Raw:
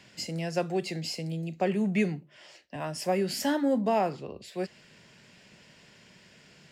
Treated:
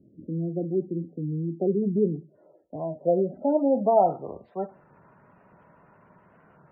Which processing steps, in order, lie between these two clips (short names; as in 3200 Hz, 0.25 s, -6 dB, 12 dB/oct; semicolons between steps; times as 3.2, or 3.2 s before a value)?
bell 1300 Hz +8 dB 0.3 oct; reverb RT60 0.35 s, pre-delay 3 ms, DRR 10 dB; low-pass sweep 320 Hz -> 990 Hz, 1.2–4.97; high shelf 8200 Hz +7 dB; spectral gate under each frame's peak -25 dB strong; record warp 33 1/3 rpm, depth 100 cents